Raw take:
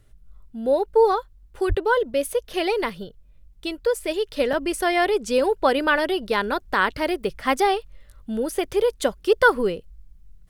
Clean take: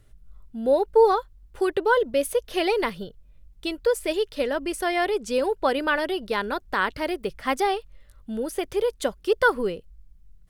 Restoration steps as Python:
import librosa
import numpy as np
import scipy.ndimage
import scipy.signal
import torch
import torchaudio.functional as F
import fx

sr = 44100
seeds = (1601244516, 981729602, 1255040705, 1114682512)

y = fx.highpass(x, sr, hz=140.0, slope=24, at=(1.68, 1.8), fade=0.02)
y = fx.fix_interpolate(y, sr, at_s=(2.53, 4.53), length_ms=3.6)
y = fx.gain(y, sr, db=fx.steps((0.0, 0.0), (4.28, -3.5)))